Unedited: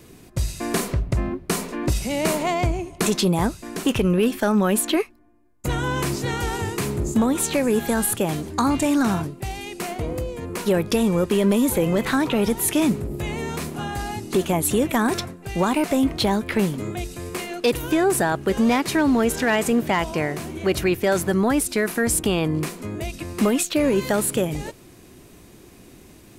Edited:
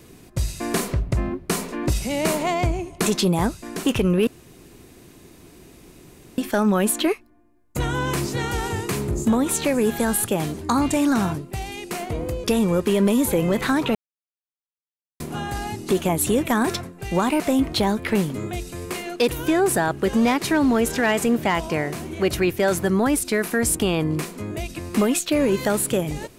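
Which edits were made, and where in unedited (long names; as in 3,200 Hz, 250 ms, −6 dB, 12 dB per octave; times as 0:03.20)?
0:04.27: splice in room tone 2.11 s
0:10.33–0:10.88: remove
0:12.39–0:13.64: silence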